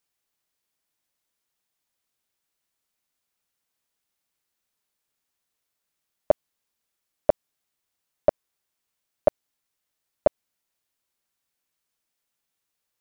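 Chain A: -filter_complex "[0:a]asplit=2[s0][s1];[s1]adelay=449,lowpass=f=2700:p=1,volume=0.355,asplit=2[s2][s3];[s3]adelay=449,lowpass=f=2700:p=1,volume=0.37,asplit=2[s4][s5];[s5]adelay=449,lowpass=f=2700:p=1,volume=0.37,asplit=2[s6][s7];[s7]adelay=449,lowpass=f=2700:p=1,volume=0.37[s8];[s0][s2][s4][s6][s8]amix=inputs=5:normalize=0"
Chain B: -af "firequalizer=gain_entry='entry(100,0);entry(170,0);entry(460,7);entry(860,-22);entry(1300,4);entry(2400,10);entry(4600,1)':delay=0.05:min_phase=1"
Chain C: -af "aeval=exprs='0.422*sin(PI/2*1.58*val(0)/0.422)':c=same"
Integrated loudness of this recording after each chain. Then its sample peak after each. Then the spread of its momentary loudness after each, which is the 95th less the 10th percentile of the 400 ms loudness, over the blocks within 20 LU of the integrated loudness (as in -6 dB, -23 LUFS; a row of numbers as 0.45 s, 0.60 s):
-30.0 LUFS, -29.0 LUFS, -26.0 LUFS; -7.5 dBFS, -6.0 dBFS, -7.5 dBFS; 18 LU, 0 LU, 0 LU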